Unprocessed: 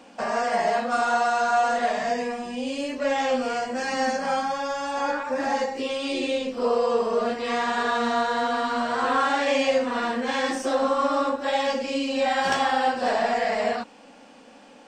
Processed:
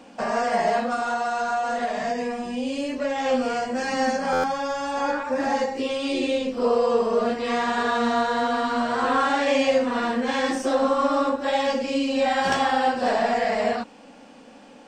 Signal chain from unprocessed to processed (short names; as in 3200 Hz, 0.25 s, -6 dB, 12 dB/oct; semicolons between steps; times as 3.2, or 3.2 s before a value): low shelf 350 Hz +5.5 dB; 0.87–3.26 compressor, threshold -22 dBFS, peak gain reduction 6 dB; stuck buffer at 4.32, samples 512, times 9